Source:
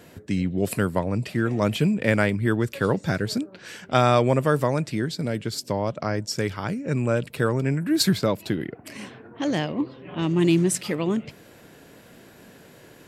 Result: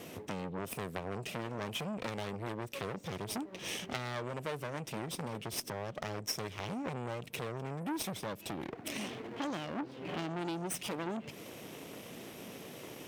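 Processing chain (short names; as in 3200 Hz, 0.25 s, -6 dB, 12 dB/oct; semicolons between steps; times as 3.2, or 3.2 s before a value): minimum comb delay 0.35 ms; HPF 190 Hz 6 dB/oct; compressor 10:1, threshold -35 dBFS, peak gain reduction 18 dB; core saturation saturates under 2200 Hz; gain +4 dB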